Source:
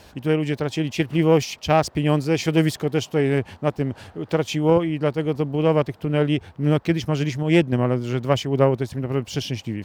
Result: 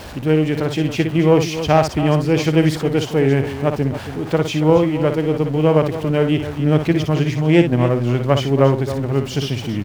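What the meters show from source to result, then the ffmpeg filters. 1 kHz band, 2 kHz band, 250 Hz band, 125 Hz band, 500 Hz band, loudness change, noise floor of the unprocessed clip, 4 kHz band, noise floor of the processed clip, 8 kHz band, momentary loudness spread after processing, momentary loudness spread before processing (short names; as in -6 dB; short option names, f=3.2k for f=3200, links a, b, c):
+4.0 dB, +3.5 dB, +4.5 dB, +5.0 dB, +4.5 dB, +4.5 dB, -50 dBFS, +3.0 dB, -30 dBFS, +1.5 dB, 6 LU, 7 LU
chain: -af "aeval=exprs='val(0)+0.5*0.0224*sgn(val(0))':c=same,highshelf=f=4.3k:g=-7,aecho=1:1:58.31|277:0.398|0.251,volume=3dB"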